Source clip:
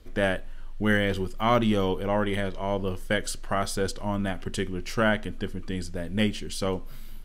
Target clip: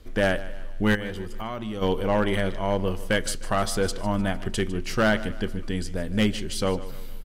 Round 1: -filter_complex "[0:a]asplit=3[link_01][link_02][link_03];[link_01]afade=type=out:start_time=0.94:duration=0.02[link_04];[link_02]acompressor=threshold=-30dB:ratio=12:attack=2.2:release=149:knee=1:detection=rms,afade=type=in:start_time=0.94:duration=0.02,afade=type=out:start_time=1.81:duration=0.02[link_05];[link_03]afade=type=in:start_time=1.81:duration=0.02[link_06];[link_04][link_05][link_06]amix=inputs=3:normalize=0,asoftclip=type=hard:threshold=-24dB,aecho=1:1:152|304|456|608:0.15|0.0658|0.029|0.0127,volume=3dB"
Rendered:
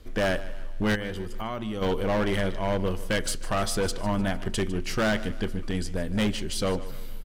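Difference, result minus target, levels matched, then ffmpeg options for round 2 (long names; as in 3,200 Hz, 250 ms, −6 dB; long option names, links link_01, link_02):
hard clipping: distortion +9 dB
-filter_complex "[0:a]asplit=3[link_01][link_02][link_03];[link_01]afade=type=out:start_time=0.94:duration=0.02[link_04];[link_02]acompressor=threshold=-30dB:ratio=12:attack=2.2:release=149:knee=1:detection=rms,afade=type=in:start_time=0.94:duration=0.02,afade=type=out:start_time=1.81:duration=0.02[link_05];[link_03]afade=type=in:start_time=1.81:duration=0.02[link_06];[link_04][link_05][link_06]amix=inputs=3:normalize=0,asoftclip=type=hard:threshold=-18dB,aecho=1:1:152|304|456|608:0.15|0.0658|0.029|0.0127,volume=3dB"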